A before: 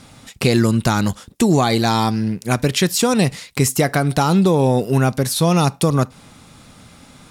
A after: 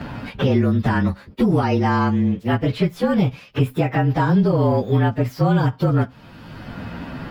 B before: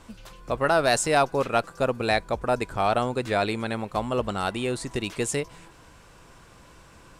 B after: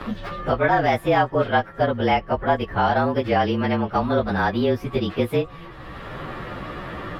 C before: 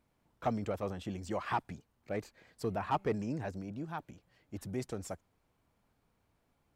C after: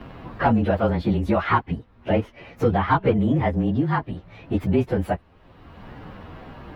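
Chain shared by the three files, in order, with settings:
inharmonic rescaling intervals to 110%; high shelf 3800 Hz +7.5 dB; in parallel at -11 dB: one-sided clip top -18 dBFS; on the sum: air absorption 400 m; three-band squash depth 70%; normalise peaks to -6 dBFS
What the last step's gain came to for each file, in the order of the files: -1.5, +5.5, +17.5 dB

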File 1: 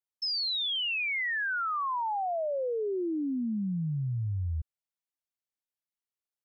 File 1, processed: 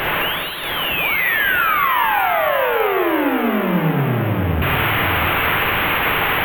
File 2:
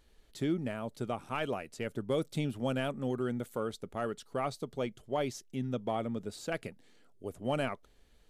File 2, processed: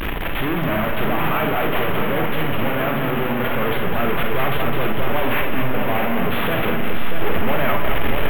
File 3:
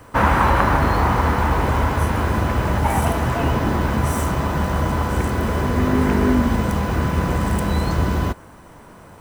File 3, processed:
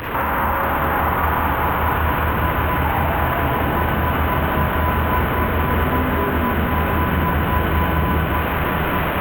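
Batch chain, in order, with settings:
delta modulation 16 kbps, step -23 dBFS; notches 50/100/150/200/250 Hz; dynamic EQ 1300 Hz, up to +5 dB, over -33 dBFS, Q 0.74; in parallel at +1 dB: vocal rider within 4 dB 2 s; on the sum: limiter -5.5 dBFS; compressor 3:1, threshold -16 dBFS; on a send: multi-head echo 0.212 s, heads first and third, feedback 54%, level -7 dB; on the sum: Schroeder reverb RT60 0.32 s, DRR 4.5 dB; careless resampling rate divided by 3×, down filtered, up hold; normalise peaks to -6 dBFS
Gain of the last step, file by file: +1.0, -1.5, -3.5 dB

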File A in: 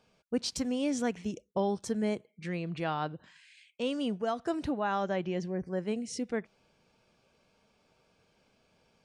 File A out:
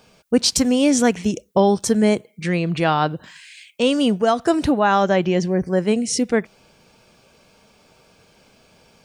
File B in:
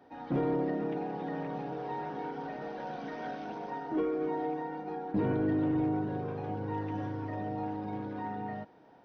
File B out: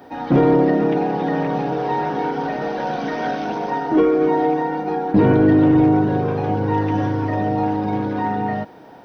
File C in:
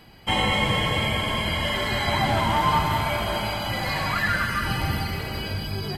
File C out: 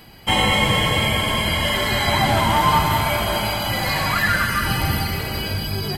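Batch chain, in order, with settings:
high shelf 7800 Hz +9.5 dB; match loudness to -19 LUFS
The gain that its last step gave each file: +14.5, +15.5, +4.5 dB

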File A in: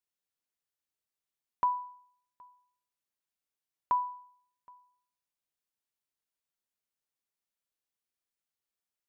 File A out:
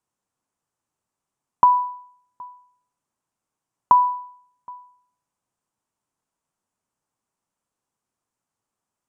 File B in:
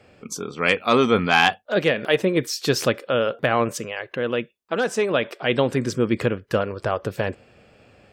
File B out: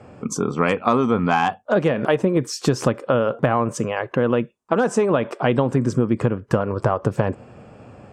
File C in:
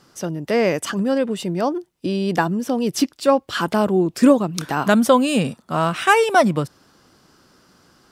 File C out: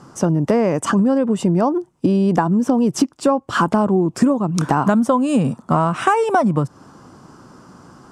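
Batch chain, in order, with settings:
graphic EQ 125/250/1000/2000/4000/8000 Hz +7/+5/+8/-5/-9/+6 dB; compressor 10:1, threshold -20 dBFS; air absorption 58 m; normalise peaks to -3 dBFS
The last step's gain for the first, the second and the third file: +10.5, +5.5, +7.5 dB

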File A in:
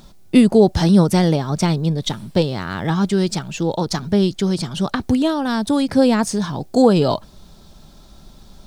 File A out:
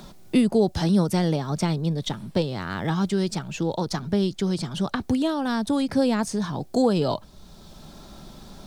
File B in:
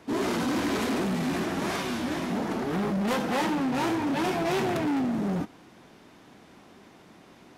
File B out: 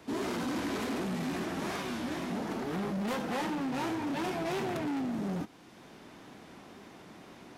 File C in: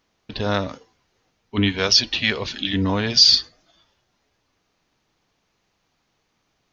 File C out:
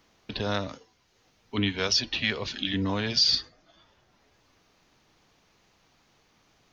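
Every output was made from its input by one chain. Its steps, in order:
wow and flutter 24 cents; three-band squash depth 40%; gain -6.5 dB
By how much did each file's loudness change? -6.5, -6.5, -8.5 LU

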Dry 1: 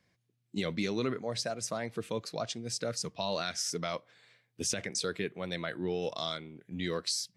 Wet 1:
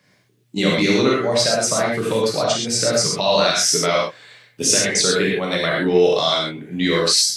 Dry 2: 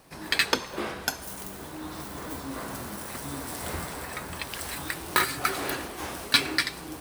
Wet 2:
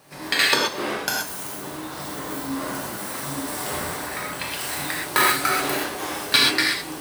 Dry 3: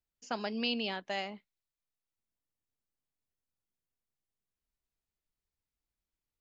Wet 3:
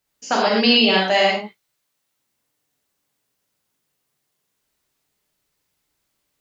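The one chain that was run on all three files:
HPF 210 Hz 6 dB/oct; non-linear reverb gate 0.15 s flat, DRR -4 dB; normalise peaks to -3 dBFS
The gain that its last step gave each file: +12.0, +1.5, +14.5 dB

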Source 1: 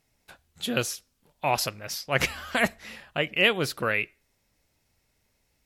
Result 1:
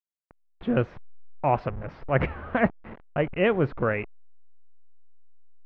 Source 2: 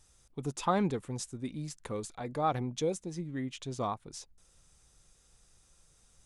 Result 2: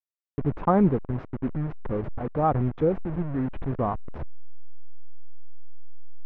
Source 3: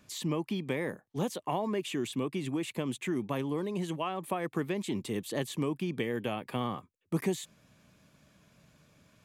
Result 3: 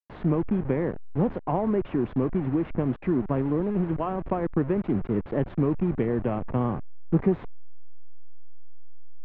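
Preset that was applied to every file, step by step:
level-crossing sampler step -36 dBFS; Bessel low-pass 1400 Hz, order 4; tilt -1.5 dB/oct; match loudness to -27 LUFS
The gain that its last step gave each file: +3.0, +7.0, +5.5 dB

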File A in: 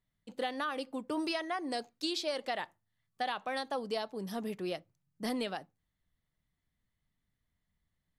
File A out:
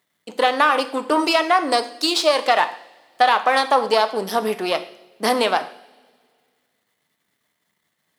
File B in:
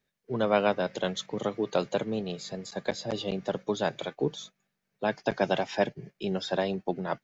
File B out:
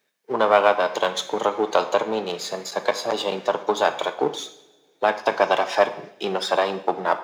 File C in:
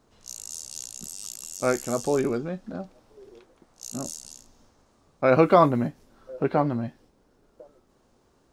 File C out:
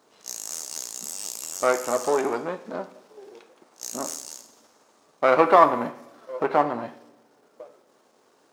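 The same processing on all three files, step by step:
half-wave gain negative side -7 dB; HPF 350 Hz 12 dB/oct; in parallel at +3 dB: compressor, threshold -36 dBFS; on the sum: two-slope reverb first 0.68 s, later 2.2 s, from -18 dB, DRR 9 dB; dynamic EQ 980 Hz, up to +7 dB, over -42 dBFS, Q 1.2; normalise peaks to -2 dBFS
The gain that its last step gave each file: +11.5, +4.5, 0.0 dB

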